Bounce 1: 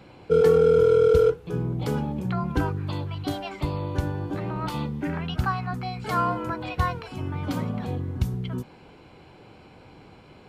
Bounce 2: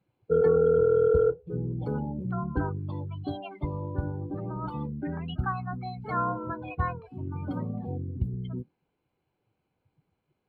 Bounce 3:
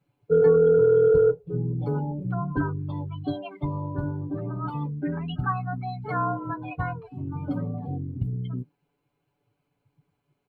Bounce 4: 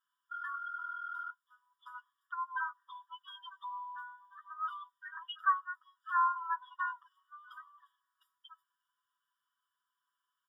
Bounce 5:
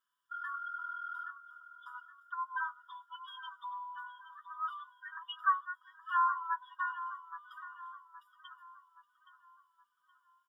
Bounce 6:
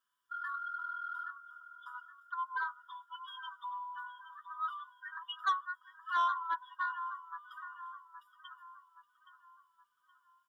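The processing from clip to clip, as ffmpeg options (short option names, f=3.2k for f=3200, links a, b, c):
-af "afftdn=nr=26:nf=-31,equalizer=f=6.1k:w=3.1:g=-14,volume=-4dB"
-af "aecho=1:1:7:0.9"
-af "afftfilt=real='re*eq(mod(floor(b*sr/1024/960),2),1)':imag='im*eq(mod(floor(b*sr/1024/960),2),1)':win_size=1024:overlap=0.75"
-filter_complex "[0:a]asplit=2[a][b];[b]adelay=821,lowpass=f=2.9k:p=1,volume=-12dB,asplit=2[c][d];[d]adelay=821,lowpass=f=2.9k:p=1,volume=0.47,asplit=2[e][f];[f]adelay=821,lowpass=f=2.9k:p=1,volume=0.47,asplit=2[g][h];[h]adelay=821,lowpass=f=2.9k:p=1,volume=0.47,asplit=2[i][j];[j]adelay=821,lowpass=f=2.9k:p=1,volume=0.47[k];[a][c][e][g][i][k]amix=inputs=6:normalize=0"
-af "asoftclip=type=tanh:threshold=-25dB,volume=1dB"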